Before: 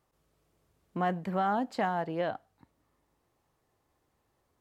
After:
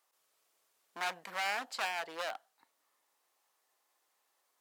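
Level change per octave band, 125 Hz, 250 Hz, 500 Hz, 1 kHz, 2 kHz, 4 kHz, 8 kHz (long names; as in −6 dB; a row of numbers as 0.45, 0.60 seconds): below −25 dB, −23.0 dB, −11.0 dB, −7.5 dB, +3.0 dB, +8.0 dB, can't be measured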